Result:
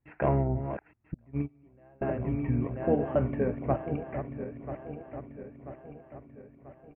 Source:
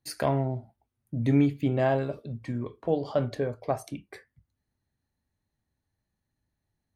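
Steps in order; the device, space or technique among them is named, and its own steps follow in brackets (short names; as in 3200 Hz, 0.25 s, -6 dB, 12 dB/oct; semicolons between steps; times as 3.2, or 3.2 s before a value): regenerating reverse delay 0.494 s, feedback 71%, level -9.5 dB; steep low-pass 2700 Hz 72 dB/oct; 1.14–2.02 gate -17 dBFS, range -33 dB; low shelf 360 Hz +2.5 dB; octave pedal (harmoniser -12 st -6 dB); gain -1.5 dB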